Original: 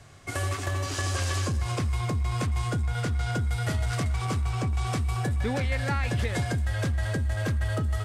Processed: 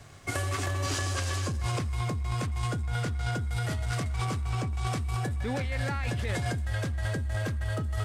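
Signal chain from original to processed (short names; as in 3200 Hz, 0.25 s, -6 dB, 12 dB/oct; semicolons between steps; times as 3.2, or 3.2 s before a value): in parallel at +3 dB: negative-ratio compressor -30 dBFS, ratio -0.5; on the sum: crossover distortion -54.5 dBFS; gain -8 dB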